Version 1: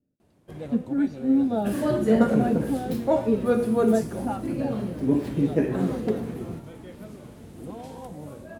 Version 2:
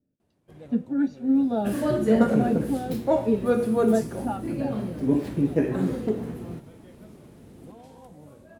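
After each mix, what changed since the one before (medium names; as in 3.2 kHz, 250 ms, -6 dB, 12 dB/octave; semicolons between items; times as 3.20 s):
first sound -8.5 dB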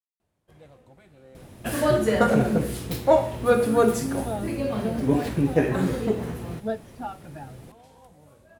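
speech: entry +2.75 s; second sound +8.5 dB; master: add peaking EQ 260 Hz -9.5 dB 1.9 oct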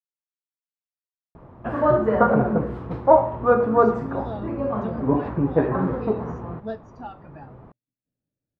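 speech -3.0 dB; first sound: muted; second sound: add resonant low-pass 1.1 kHz, resonance Q 2.6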